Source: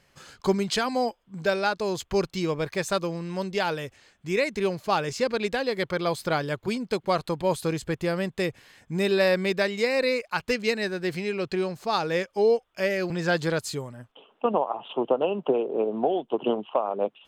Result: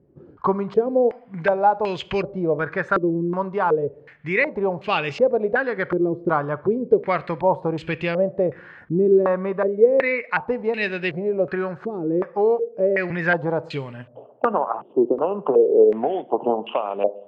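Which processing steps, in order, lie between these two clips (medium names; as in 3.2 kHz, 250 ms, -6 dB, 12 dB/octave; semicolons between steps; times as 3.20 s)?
high-pass 54 Hz; in parallel at +3 dB: compression, threshold -34 dBFS, peak gain reduction 16 dB; 9.23–10.22 s: on the sum: distance through air 210 m; reverberation RT60 0.70 s, pre-delay 7 ms, DRR 15.5 dB; step-sequenced low-pass 2.7 Hz 350–2700 Hz; trim -2 dB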